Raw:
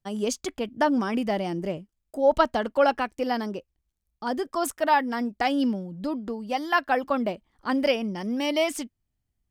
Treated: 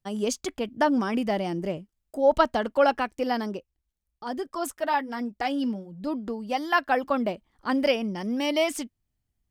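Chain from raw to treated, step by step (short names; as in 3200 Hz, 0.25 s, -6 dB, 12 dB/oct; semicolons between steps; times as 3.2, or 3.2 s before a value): 3.57–6.07 flange 1.2 Hz, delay 0.1 ms, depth 5.1 ms, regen -48%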